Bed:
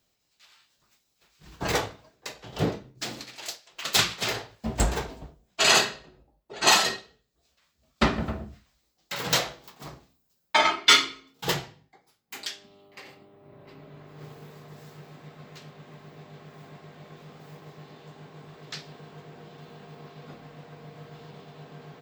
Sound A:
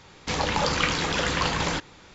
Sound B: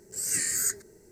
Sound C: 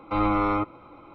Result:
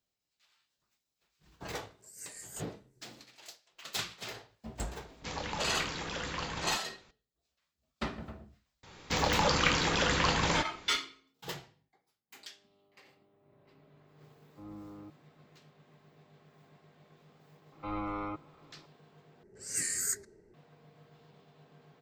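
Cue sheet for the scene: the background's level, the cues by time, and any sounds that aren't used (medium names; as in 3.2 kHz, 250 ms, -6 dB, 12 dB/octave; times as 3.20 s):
bed -14 dB
1.90 s: add B -17 dB + rotary cabinet horn 5.5 Hz
4.97 s: add A -12.5 dB
8.83 s: add A -3 dB
14.46 s: add C -17 dB + band-pass filter 180 Hz, Q 1.2
17.72 s: add C -13.5 dB
19.43 s: replace with B -5 dB + level-controlled noise filter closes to 1.8 kHz, open at -23.5 dBFS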